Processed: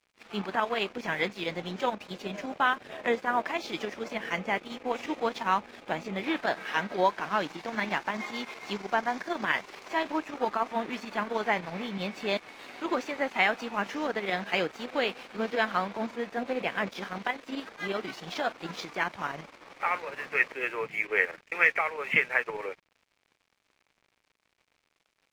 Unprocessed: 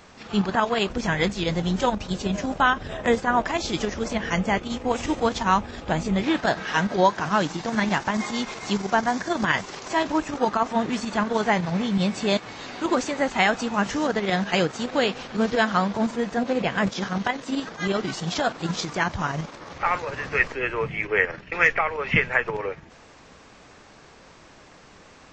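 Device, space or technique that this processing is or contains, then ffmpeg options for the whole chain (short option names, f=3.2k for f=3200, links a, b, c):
pocket radio on a weak battery: -af "highpass=270,lowpass=4.4k,aeval=exprs='sgn(val(0))*max(abs(val(0))-0.00531,0)':c=same,equalizer=f=2.3k:t=o:w=0.38:g=5.5,volume=-5.5dB"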